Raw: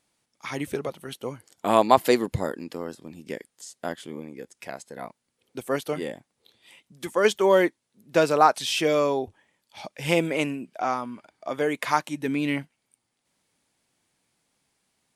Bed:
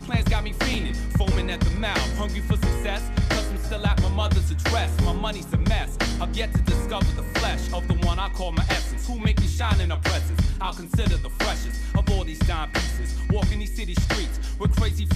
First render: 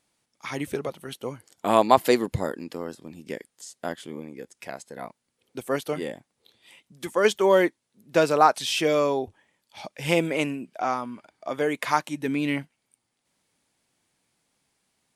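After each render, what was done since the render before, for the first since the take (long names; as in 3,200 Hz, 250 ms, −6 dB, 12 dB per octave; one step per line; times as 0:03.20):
no processing that can be heard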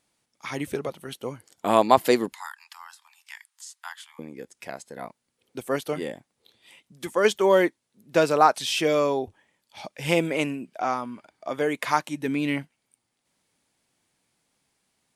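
0:02.33–0:04.19: Butterworth high-pass 850 Hz 72 dB per octave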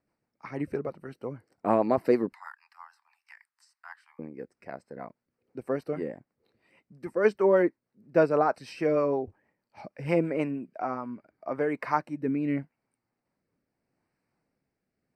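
moving average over 13 samples
rotating-speaker cabinet horn 6.3 Hz, later 0.8 Hz, at 0:10.48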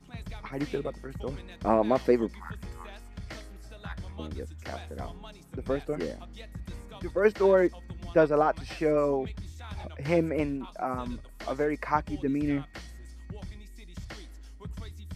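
mix in bed −19 dB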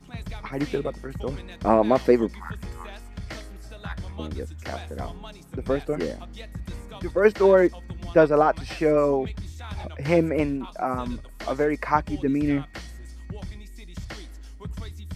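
level +5 dB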